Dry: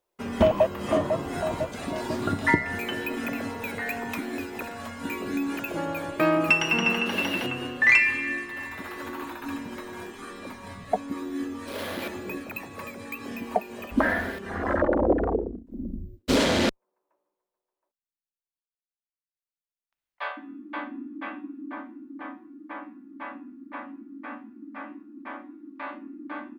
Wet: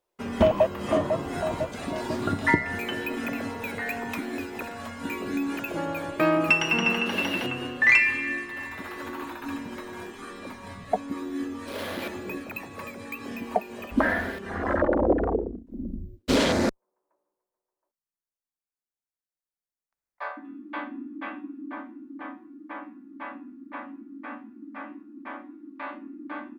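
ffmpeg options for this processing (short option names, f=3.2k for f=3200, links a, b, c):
-filter_complex "[0:a]asettb=1/sr,asplit=3[a][b][c];[a]atrim=end=16.524[d];[b]atrim=start=16.52:end=20.45,asetpts=PTS-STARTPTS,afade=t=in:d=0.004:c=qsin,afade=t=out:st=3.926:d=0.004:c=qsin,equalizer=f=3.1k:t=o:w=0.74:g=-15[e];[c]atrim=start=20.446[f];[d][e]acrossfade=d=0.004:c1=hsin:c2=qsin[g];[g][f]acrossfade=d=0.004:c1=qsin:c2=hsin,highshelf=f=10k:g=-3.5"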